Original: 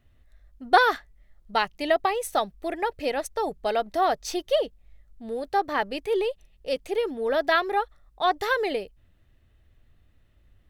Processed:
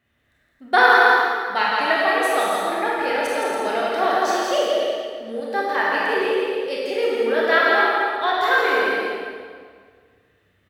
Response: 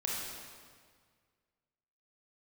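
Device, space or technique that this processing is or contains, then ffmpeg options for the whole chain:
stadium PA: -filter_complex "[0:a]highpass=150,equalizer=f=1.8k:t=o:w=0.98:g=7,aecho=1:1:166.2|279.9:0.631|0.447[a];[1:a]atrim=start_sample=2205[b];[a][b]afir=irnorm=-1:irlink=0,asettb=1/sr,asplit=3[c][d][e];[c]atrim=end=5.404[f];[d]atrim=start=5.4:end=6.27,asetpts=PTS-STARTPTS,afade=t=in:d=0.004:c=qsin,afade=t=out:st=0.866:d=0.004:c=qsin,highpass=f=180:p=1[g];[e]atrim=start=6.266[h];[f][g]acrossfade=d=0.004:c1=hsin:c2=qsin[i];[i][h]acrossfade=d=0.004:c1=qsin:c2=hsin,volume=-1.5dB"

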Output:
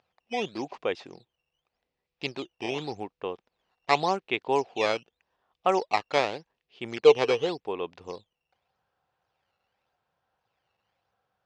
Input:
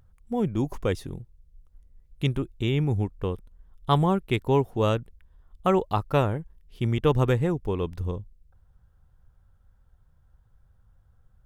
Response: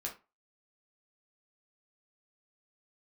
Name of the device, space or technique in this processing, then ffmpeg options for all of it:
circuit-bent sampling toy: -filter_complex "[0:a]acrusher=samples=9:mix=1:aa=0.000001:lfo=1:lforange=14.4:lforate=0.86,highpass=430,equalizer=f=750:t=q:w=4:g=5,equalizer=f=1.4k:t=q:w=4:g=-3,equalizer=f=2.6k:t=q:w=4:g=5,lowpass=f=5.2k:w=0.5412,lowpass=f=5.2k:w=1.3066,asettb=1/sr,asplit=3[a][b][c];[a]atrim=end=7.024[d];[b]atrim=start=7.02:end=7.49,asetpts=PTS-STARTPTS,afade=t=in:d=0.004:c=qsin,afade=t=out:st=0.466:d=0.004:c=qsin,equalizer=f=450:w=6.3:g=11.5[e];[c]atrim=start=7.486[f];[d][e]acrossfade=d=0.004:c1=hsin:c2=qsin[g];[g][f]acrossfade=d=0.004:c1=qsin:c2=hsin"

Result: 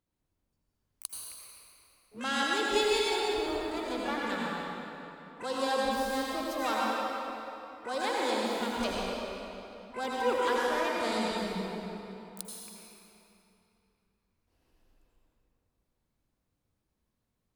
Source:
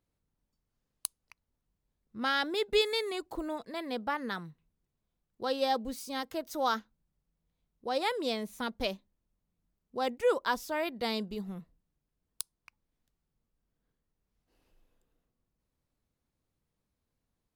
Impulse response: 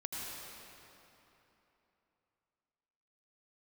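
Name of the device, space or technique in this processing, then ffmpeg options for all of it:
shimmer-style reverb: -filter_complex "[0:a]asplit=2[a][b];[b]asetrate=88200,aresample=44100,atempo=0.5,volume=-8dB[c];[a][c]amix=inputs=2:normalize=0[d];[1:a]atrim=start_sample=2205[e];[d][e]afir=irnorm=-1:irlink=0,asettb=1/sr,asplit=3[f][g][h];[f]atrim=end=10.564[i];[g]atrim=start=10.56:end=11.38,asetpts=PTS-STARTPTS,afade=t=in:d=0.004:c=qsin,afade=t=out:st=0.816:d=0.004:c=qsin,lowpass=11k[j];[h]atrim=start=11.376[k];[i][j]acrossfade=d=0.004:c1=hsin:c2=qsin[l];[l][k]acrossfade=d=0.004:c1=qsin:c2=hsin"

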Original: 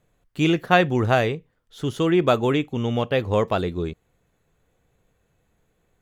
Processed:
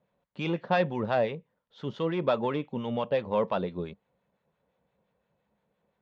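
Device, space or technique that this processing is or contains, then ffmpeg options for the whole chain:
guitar amplifier with harmonic tremolo: -filter_complex "[0:a]acrossover=split=960[a][b];[a]aeval=exprs='val(0)*(1-0.5/2+0.5/2*cos(2*PI*5.8*n/s))':c=same[c];[b]aeval=exprs='val(0)*(1-0.5/2-0.5/2*cos(2*PI*5.8*n/s))':c=same[d];[c][d]amix=inputs=2:normalize=0,asoftclip=type=tanh:threshold=-14dB,highpass=89,equalizer=f=98:t=q:w=4:g=-9,equalizer=f=200:t=q:w=4:g=8,equalizer=f=320:t=q:w=4:g=-4,equalizer=f=560:t=q:w=4:g=9,equalizer=f=940:t=q:w=4:g=9,lowpass=f=4.5k:w=0.5412,lowpass=f=4.5k:w=1.3066,volume=-6.5dB"

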